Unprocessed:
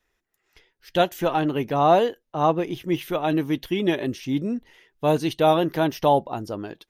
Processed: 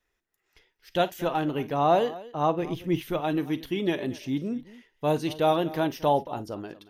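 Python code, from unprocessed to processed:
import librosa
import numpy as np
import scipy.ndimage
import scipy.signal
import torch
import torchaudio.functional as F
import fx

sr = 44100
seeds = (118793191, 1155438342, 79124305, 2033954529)

y = fx.low_shelf(x, sr, hz=180.0, db=9.0, at=(2.62, 3.2))
y = fx.echo_multitap(y, sr, ms=(41, 53, 231), db=(-18.0, -19.0, -18.5))
y = F.gain(torch.from_numpy(y), -4.5).numpy()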